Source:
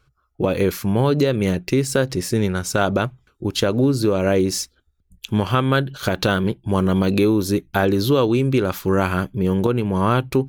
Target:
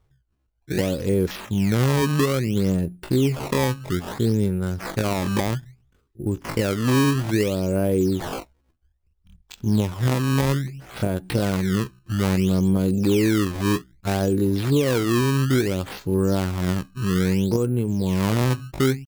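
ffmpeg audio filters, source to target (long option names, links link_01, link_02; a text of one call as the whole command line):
ffmpeg -i in.wav -af "equalizer=frequency=1800:width=0.38:gain=-12.5,acrusher=samples=18:mix=1:aa=0.000001:lfo=1:lforange=28.8:lforate=1.1,atempo=0.55" out.wav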